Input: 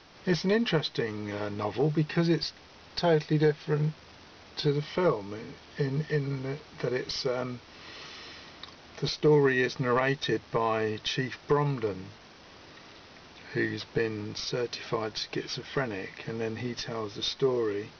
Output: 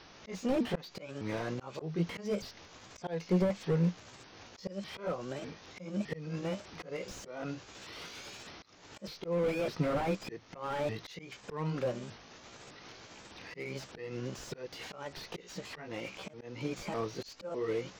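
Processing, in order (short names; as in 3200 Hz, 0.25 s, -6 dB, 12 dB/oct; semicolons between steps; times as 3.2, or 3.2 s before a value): repeated pitch sweeps +5.5 st, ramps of 0.605 s; auto swell 0.298 s; slew limiter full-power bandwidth 22 Hz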